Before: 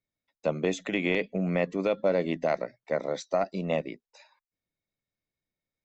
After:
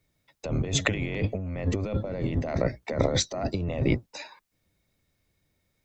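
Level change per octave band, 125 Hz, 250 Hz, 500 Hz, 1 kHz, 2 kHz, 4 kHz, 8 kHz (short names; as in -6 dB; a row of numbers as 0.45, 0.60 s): +9.0 dB, +1.0 dB, -3.0 dB, -3.0 dB, 0.0 dB, +8.0 dB, n/a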